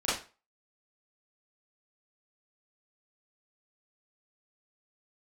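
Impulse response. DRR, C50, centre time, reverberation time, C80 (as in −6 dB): −11.5 dB, 2.5 dB, 49 ms, 0.35 s, 10.0 dB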